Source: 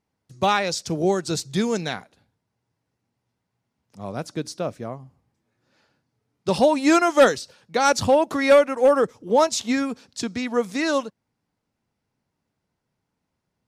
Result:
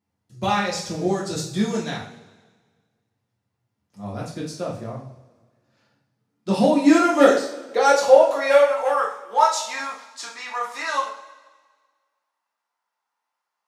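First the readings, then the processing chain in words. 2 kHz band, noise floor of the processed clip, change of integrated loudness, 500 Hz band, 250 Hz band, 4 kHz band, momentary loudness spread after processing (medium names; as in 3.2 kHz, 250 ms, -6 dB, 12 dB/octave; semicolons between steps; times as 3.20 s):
0.0 dB, -82 dBFS, +1.0 dB, +0.5 dB, +1.0 dB, -1.5 dB, 19 LU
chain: high-pass sweep 98 Hz -> 970 Hz, 5.62–8.99 s; two-slope reverb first 0.45 s, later 1.6 s, from -17 dB, DRR -5 dB; trim -7.5 dB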